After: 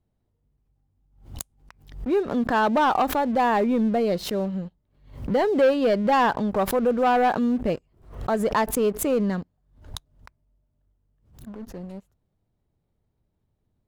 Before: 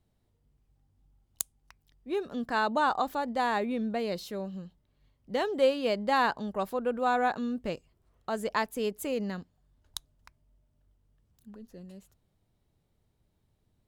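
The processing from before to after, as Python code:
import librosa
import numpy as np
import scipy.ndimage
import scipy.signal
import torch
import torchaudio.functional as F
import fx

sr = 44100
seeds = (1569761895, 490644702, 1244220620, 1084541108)

y = fx.high_shelf(x, sr, hz=2200.0, db=-11.0)
y = fx.leveller(y, sr, passes=2)
y = fx.pre_swell(y, sr, db_per_s=110.0)
y = F.gain(torch.from_numpy(y), 3.0).numpy()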